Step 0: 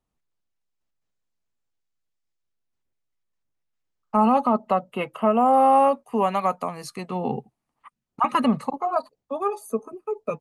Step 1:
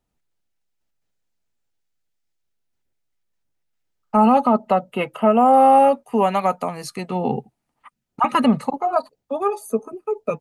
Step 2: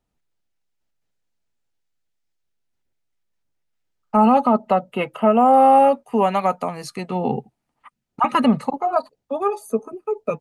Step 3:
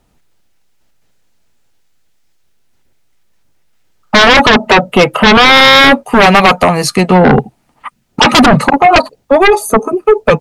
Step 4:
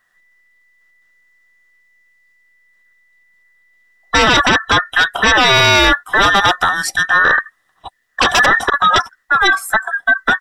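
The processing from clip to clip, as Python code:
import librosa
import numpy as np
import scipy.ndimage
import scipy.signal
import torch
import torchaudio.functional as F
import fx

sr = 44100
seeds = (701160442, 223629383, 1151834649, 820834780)

y1 = fx.notch(x, sr, hz=1100.0, q=7.7)
y1 = F.gain(torch.from_numpy(y1), 4.5).numpy()
y2 = fx.high_shelf(y1, sr, hz=9600.0, db=-6.0)
y3 = fx.fold_sine(y2, sr, drive_db=14, ceiling_db=-4.0)
y3 = F.gain(torch.from_numpy(y3), 2.5).numpy()
y4 = fx.band_invert(y3, sr, width_hz=2000)
y4 = F.gain(torch.from_numpy(y4), -6.0).numpy()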